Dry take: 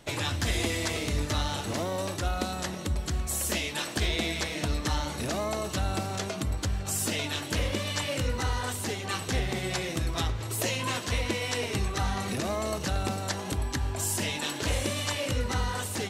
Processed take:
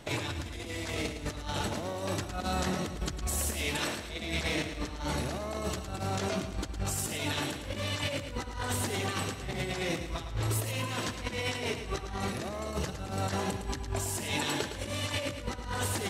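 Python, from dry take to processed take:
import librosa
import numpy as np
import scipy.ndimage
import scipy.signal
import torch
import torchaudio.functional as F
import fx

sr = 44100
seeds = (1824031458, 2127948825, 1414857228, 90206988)

p1 = fx.high_shelf(x, sr, hz=4400.0, db=-4.5)
p2 = fx.over_compress(p1, sr, threshold_db=-34.0, ratio=-0.5)
y = p2 + fx.echo_feedback(p2, sr, ms=110, feedback_pct=48, wet_db=-9, dry=0)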